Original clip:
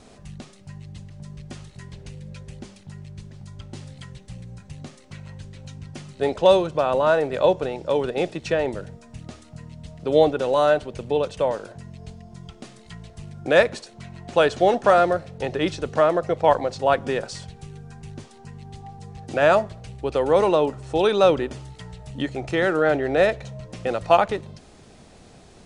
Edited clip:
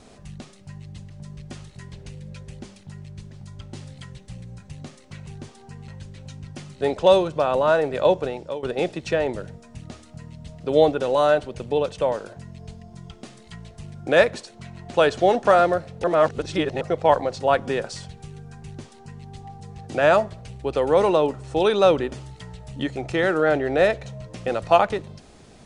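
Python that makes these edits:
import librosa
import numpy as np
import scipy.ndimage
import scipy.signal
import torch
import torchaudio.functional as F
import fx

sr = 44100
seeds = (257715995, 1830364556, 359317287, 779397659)

y = fx.edit(x, sr, fx.fade_out_to(start_s=7.57, length_s=0.45, curve='qsin', floor_db=-18.0),
    fx.reverse_span(start_s=15.43, length_s=0.77),
    fx.duplicate(start_s=18.03, length_s=0.61, to_s=5.27), tone=tone)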